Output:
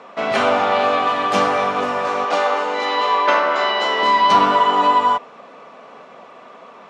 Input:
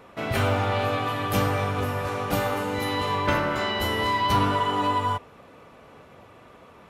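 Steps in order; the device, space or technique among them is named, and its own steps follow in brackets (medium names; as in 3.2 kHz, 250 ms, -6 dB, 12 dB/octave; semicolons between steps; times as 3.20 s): television speaker (cabinet simulation 210–7000 Hz, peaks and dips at 320 Hz -7 dB, 680 Hz +5 dB, 1.1 kHz +5 dB); 2.25–4.03 s: three-band isolator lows -23 dB, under 290 Hz, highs -15 dB, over 8 kHz; trim +7 dB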